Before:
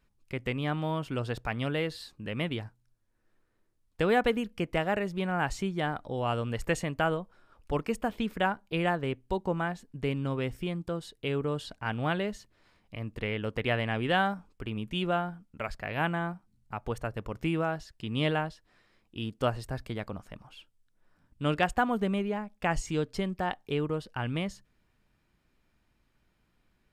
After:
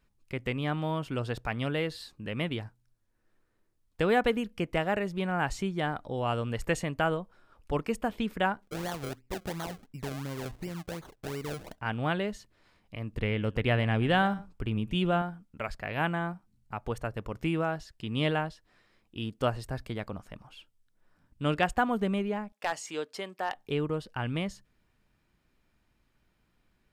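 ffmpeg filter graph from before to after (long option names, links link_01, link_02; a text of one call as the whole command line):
ffmpeg -i in.wav -filter_complex "[0:a]asettb=1/sr,asplit=3[link_01][link_02][link_03];[link_01]atrim=end=8.624[link_04];[link_02]atrim=start=8.62:end=11.79,asetpts=PTS-STARTPTS,afade=type=in:duration=0.004:curve=qsin,afade=type=out:start_time=3.166:duration=0.004:curve=qsin,highshelf=frequency=6200:gain=-11,acompressor=threshold=-36dB:ratio=2:attack=3.2:release=140:knee=1:detection=peak,acrusher=samples=33:mix=1:aa=0.000001:lfo=1:lforange=33:lforate=2.8[link_05];[link_03]atrim=start=11.786[link_06];[link_04][link_05]acrossfade=duration=0.004:curve1=hsin:curve2=qsin[link_07];[link_07][link_06]acrossfade=duration=0.004:curve1=qsin:curve2=hsin,asettb=1/sr,asplit=3[link_08][link_09][link_10];[link_08]atrim=end=13.134[link_11];[link_09]atrim=start=13.13:end=15.22,asetpts=PTS-STARTPTS,afade=type=in:duration=0.004:curve=qsin,afade=type=out:start_time=2.086:duration=0.004:curve=qsin,lowshelf=frequency=200:gain=8,aecho=1:1:116:0.106,atrim=end_sample=92169[link_12];[link_10]atrim=start=15.216[link_13];[link_11][link_12]acrossfade=duration=0.004:curve1=hsin:curve2=qsin[link_14];[link_14][link_13]acrossfade=duration=0.004:curve1=qsin:curve2=hsin,asettb=1/sr,asplit=3[link_15][link_16][link_17];[link_15]atrim=end=22.524[link_18];[link_16]atrim=start=22.52:end=23.55,asetpts=PTS-STARTPTS,afade=type=in:duration=0.004:curve=qsin,afade=type=out:start_time=1.026:duration=0.004:curve=qsin,highpass=470,asoftclip=type=hard:threshold=-22dB[link_19];[link_17]atrim=start=23.546[link_20];[link_18][link_19]acrossfade=duration=0.004:curve1=hsin:curve2=qsin[link_21];[link_21][link_20]acrossfade=duration=0.004:curve1=qsin:curve2=hsin" out.wav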